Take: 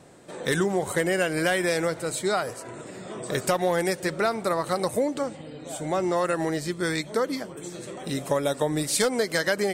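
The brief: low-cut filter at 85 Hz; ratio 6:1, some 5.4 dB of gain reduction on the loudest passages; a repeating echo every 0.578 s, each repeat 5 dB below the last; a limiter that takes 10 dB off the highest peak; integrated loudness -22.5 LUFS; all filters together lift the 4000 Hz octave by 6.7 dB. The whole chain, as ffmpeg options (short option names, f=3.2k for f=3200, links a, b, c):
-af "highpass=85,equalizer=f=4k:t=o:g=8,acompressor=threshold=-24dB:ratio=6,alimiter=limit=-20.5dB:level=0:latency=1,aecho=1:1:578|1156|1734|2312|2890|3468|4046:0.562|0.315|0.176|0.0988|0.0553|0.031|0.0173,volume=8dB"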